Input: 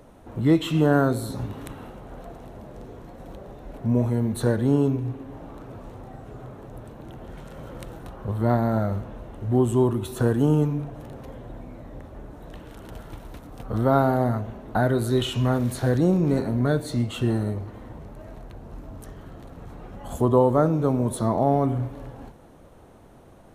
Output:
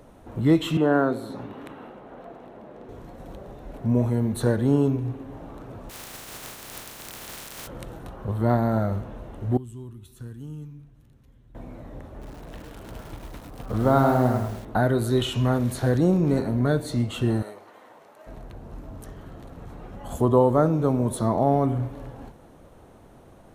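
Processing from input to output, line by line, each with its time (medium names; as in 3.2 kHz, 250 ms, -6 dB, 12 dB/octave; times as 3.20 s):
0.77–2.89 s: three-band isolator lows -18 dB, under 180 Hz, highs -14 dB, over 3.5 kHz
5.89–7.66 s: spectral contrast reduction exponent 0.21
9.57–11.55 s: amplifier tone stack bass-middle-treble 6-0-2
12.11–14.65 s: bit-crushed delay 102 ms, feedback 35%, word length 7-bit, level -5 dB
17.42–18.27 s: high-pass 630 Hz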